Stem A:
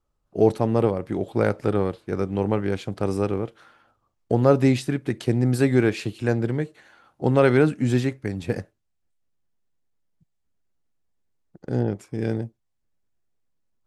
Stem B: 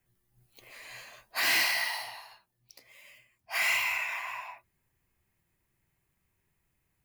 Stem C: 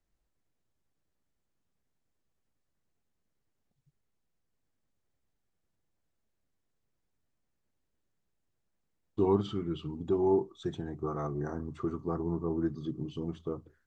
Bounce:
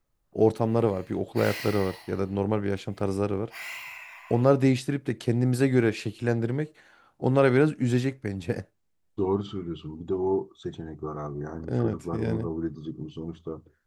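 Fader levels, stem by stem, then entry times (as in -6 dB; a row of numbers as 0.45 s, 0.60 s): -3.0 dB, -10.5 dB, +0.5 dB; 0.00 s, 0.00 s, 0.00 s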